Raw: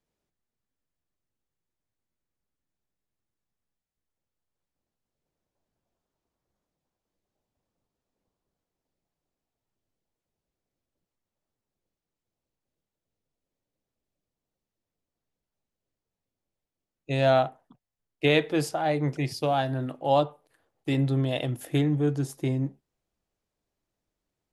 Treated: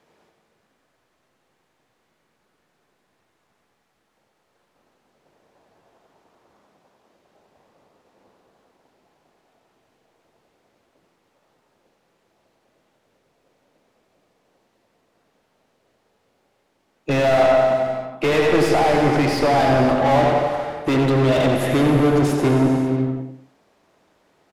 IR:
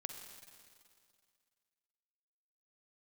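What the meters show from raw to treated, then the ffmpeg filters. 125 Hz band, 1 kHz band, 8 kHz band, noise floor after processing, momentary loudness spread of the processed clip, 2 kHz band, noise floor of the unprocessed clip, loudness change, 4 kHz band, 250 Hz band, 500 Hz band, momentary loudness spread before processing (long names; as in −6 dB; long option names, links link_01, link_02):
+6.0 dB, +10.0 dB, +8.5 dB, −69 dBFS, 8 LU, +9.5 dB, below −85 dBFS, +8.5 dB, +6.0 dB, +10.0 dB, +10.5 dB, 8 LU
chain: -filter_complex "[0:a]asplit=2[link_01][link_02];[link_02]adelay=92,lowpass=frequency=3600:poles=1,volume=-10dB,asplit=2[link_03][link_04];[link_04]adelay=92,lowpass=frequency=3600:poles=1,volume=0.34,asplit=2[link_05][link_06];[link_06]adelay=92,lowpass=frequency=3600:poles=1,volume=0.34,asplit=2[link_07][link_08];[link_08]adelay=92,lowpass=frequency=3600:poles=1,volume=0.34[link_09];[link_01][link_03][link_05][link_07][link_09]amix=inputs=5:normalize=0,asplit=2[link_10][link_11];[link_11]highpass=frequency=720:poles=1,volume=38dB,asoftclip=type=tanh:threshold=-8.5dB[link_12];[link_10][link_12]amix=inputs=2:normalize=0,lowpass=frequency=1200:poles=1,volume=-6dB[link_13];[1:a]atrim=start_sample=2205,afade=type=out:start_time=0.39:duration=0.01,atrim=end_sample=17640,asetrate=27342,aresample=44100[link_14];[link_13][link_14]afir=irnorm=-1:irlink=0"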